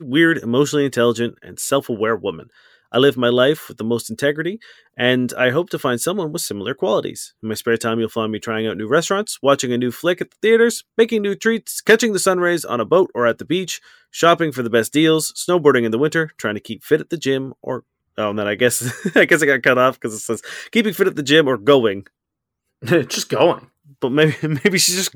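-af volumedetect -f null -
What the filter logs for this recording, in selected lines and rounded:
mean_volume: -18.3 dB
max_volume: -1.6 dB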